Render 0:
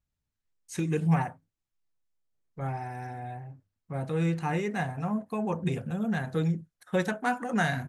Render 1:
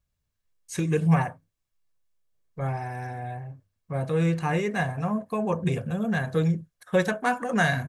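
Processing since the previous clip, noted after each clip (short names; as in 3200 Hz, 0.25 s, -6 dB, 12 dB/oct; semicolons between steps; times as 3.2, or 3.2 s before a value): comb 1.8 ms, depth 31%; gain +4 dB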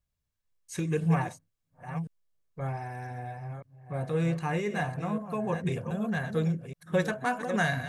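reverse delay 0.518 s, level -9.5 dB; gain -4.5 dB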